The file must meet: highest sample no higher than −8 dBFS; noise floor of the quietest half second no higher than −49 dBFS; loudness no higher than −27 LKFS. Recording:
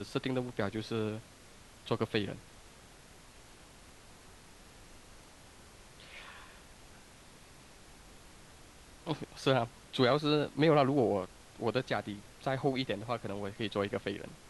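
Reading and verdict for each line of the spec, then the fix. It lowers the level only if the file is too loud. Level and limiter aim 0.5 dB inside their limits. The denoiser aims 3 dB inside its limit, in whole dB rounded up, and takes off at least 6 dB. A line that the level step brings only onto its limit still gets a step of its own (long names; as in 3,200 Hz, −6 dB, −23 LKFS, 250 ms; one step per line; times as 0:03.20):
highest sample −14.5 dBFS: in spec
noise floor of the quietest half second −56 dBFS: in spec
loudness −33.0 LKFS: in spec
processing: no processing needed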